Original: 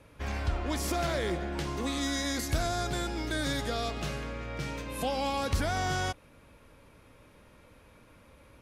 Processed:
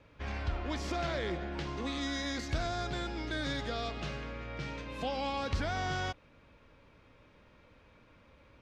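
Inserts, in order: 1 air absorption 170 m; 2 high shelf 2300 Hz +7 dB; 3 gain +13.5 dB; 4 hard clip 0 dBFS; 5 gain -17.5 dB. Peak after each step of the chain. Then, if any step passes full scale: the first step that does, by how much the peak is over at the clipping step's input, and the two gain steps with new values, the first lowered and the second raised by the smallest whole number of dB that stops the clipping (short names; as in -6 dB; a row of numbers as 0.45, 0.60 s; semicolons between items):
-19.5, -19.0, -5.5, -5.5, -23.0 dBFS; no overload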